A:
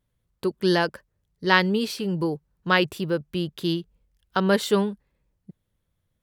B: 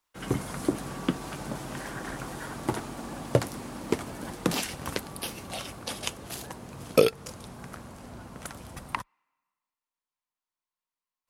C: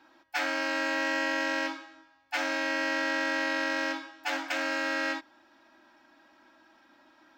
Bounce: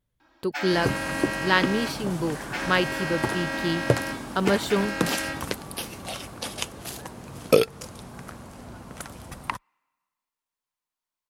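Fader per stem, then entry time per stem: -2.5 dB, +2.0 dB, -1.5 dB; 0.00 s, 0.55 s, 0.20 s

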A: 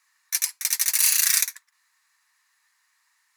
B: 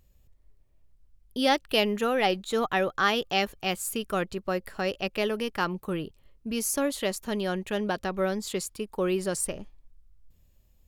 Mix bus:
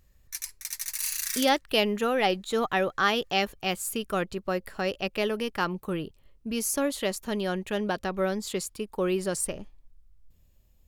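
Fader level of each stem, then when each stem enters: -11.5 dB, 0.0 dB; 0.00 s, 0.00 s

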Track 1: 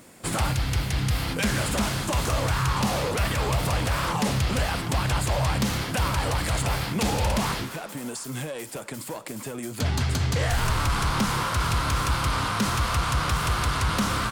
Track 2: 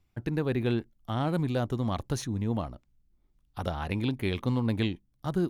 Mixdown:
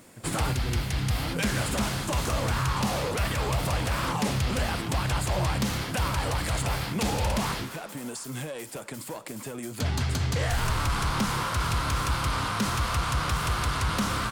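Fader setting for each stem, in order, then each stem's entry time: -2.5 dB, -10.5 dB; 0.00 s, 0.00 s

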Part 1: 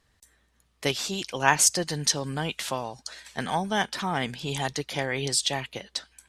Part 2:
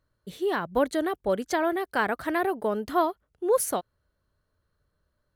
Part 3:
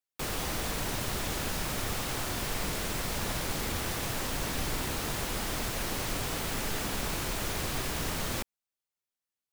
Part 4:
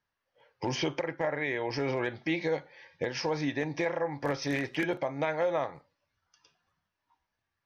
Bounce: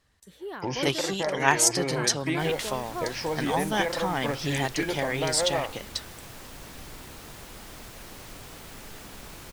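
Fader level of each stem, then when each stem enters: -1.0 dB, -11.0 dB, -10.5 dB, +0.5 dB; 0.00 s, 0.00 s, 2.20 s, 0.00 s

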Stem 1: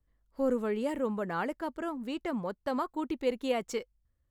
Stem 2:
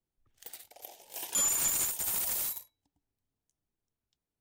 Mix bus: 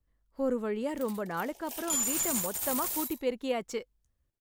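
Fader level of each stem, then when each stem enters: -1.0 dB, -1.5 dB; 0.00 s, 0.55 s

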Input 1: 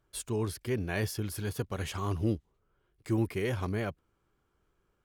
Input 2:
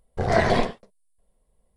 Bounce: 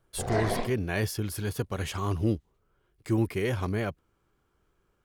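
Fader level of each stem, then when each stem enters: +3.0 dB, -9.5 dB; 0.00 s, 0.00 s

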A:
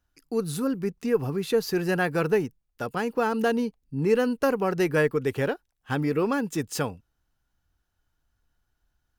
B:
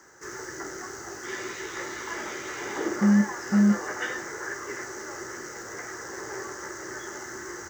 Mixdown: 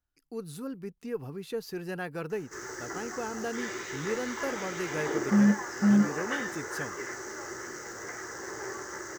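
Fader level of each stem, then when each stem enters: -11.0 dB, -2.0 dB; 0.00 s, 2.30 s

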